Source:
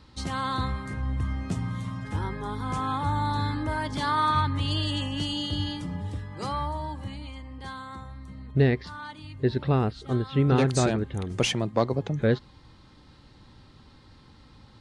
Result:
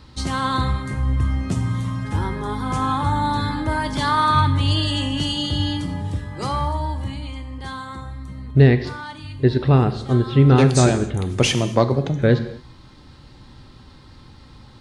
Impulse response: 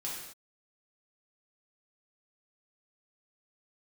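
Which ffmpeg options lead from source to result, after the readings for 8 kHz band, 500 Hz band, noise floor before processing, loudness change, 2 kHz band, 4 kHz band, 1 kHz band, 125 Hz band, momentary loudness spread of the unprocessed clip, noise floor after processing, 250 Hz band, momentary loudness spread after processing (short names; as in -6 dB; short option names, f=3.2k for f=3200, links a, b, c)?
+8.0 dB, +7.0 dB, -54 dBFS, +7.5 dB, +6.5 dB, +7.0 dB, +6.5 dB, +9.0 dB, 16 LU, -46 dBFS, +7.5 dB, 17 LU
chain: -filter_complex "[0:a]asplit=2[a][b];[1:a]atrim=start_sample=2205,lowshelf=f=180:g=9.5,highshelf=f=6.7k:g=10.5[c];[b][c]afir=irnorm=-1:irlink=0,volume=-9.5dB[d];[a][d]amix=inputs=2:normalize=0,volume=4.5dB"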